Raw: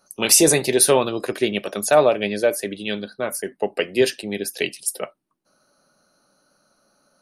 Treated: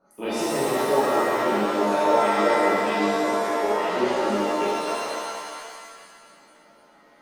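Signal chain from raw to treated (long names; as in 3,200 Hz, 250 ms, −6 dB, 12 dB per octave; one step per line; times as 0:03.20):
0:04.27–0:04.94: samples sorted by size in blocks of 16 samples
drawn EQ curve 120 Hz 0 dB, 230 Hz +8 dB, 1,400 Hz +4 dB, 14,000 Hz −19 dB
downward compressor 2.5 to 1, threshold −26 dBFS, peak gain reduction 14.5 dB
two-band tremolo in antiphase 3.3 Hz, crossover 1,500 Hz
on a send: flutter between parallel walls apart 8.3 metres, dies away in 0.23 s
on the sum: reverb with rising layers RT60 1.9 s, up +7 semitones, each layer −2 dB, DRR −10 dB
level −7 dB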